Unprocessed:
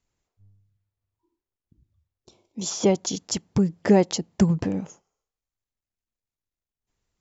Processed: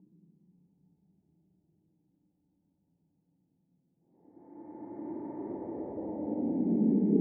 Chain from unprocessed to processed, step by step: Paulstretch 45×, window 0.05 s, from 3.74 s; cascade formant filter u

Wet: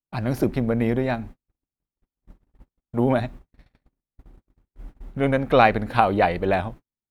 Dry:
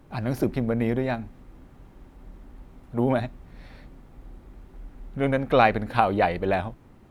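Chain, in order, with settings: gate -40 dBFS, range -50 dB; trim +2.5 dB

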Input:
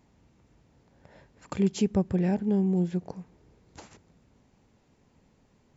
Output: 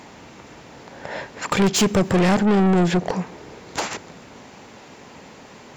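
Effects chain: 1.76–2.44 s: treble shelf 6 kHz +11.5 dB; overdrive pedal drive 30 dB, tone 5.1 kHz, clips at -14.5 dBFS; trim +4.5 dB

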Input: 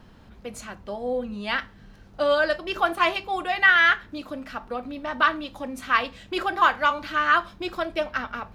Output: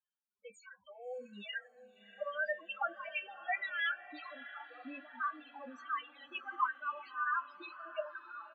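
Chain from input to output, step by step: tracing distortion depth 0.15 ms; frequency weighting ITU-R 468; gate with hold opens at -36 dBFS; treble shelf 5.9 kHz -9.5 dB; level held to a coarse grid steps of 24 dB; peak limiter -24 dBFS, peak gain reduction 16 dB; tremolo triangle 2.9 Hz, depth 85%; loudest bins only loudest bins 4; doubling 20 ms -13 dB; echo that smears into a reverb 641 ms, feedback 48%, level -15 dB; trim +7 dB

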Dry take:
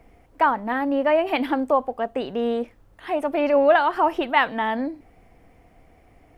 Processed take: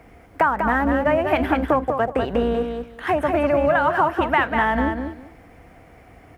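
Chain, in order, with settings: octave divider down 2 oct, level -3 dB; in parallel at -4 dB: crossover distortion -38 dBFS; on the sum: compression 6:1, threshold -24 dBFS, peak gain reduction 15.5 dB; peaking EQ 1.5 kHz +6 dB 0.79 oct; on a send: feedback delay 195 ms, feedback 18%, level -6 dB; on the sum: dynamic bell 4.2 kHz, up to -7 dB, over -50 dBFS, Q 1.3; high-pass 49 Hz; trim +6 dB

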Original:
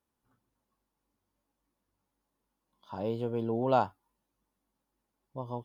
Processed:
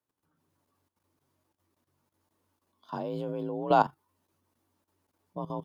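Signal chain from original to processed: frequency shift +43 Hz; level held to a coarse grid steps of 14 dB; trim +8 dB

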